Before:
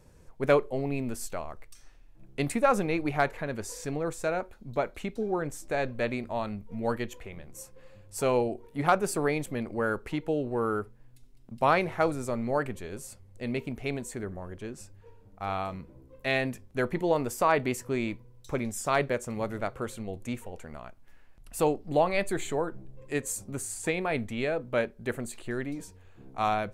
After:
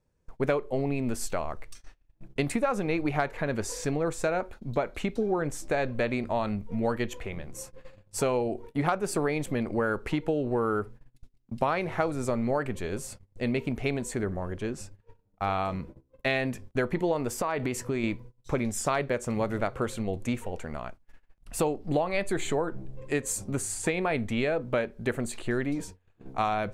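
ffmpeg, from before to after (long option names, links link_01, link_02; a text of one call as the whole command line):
ffmpeg -i in.wav -filter_complex "[0:a]asettb=1/sr,asplit=3[link_01][link_02][link_03];[link_01]atrim=end=17.324[link_04];[link_02]atrim=start=17.32:end=18.04,asetpts=PTS-STARTPTS,afade=type=in:duration=0.004:curve=qsin,afade=type=out:start_time=0.716:duration=0.004:curve=qsin,acompressor=threshold=-30dB:ratio=6:attack=3.2:release=140:knee=1:detection=peak[link_05];[link_03]atrim=start=18.036[link_06];[link_04][link_05]acrossfade=duration=0.004:curve1=hsin:curve2=qsin[link_07];[link_07][link_06]acrossfade=duration=0.004:curve1=qsin:curve2=hsin,agate=range=-24dB:threshold=-48dB:ratio=16:detection=peak,highshelf=frequency=11000:gain=-10.5,acompressor=threshold=-30dB:ratio=6,volume=6.5dB" out.wav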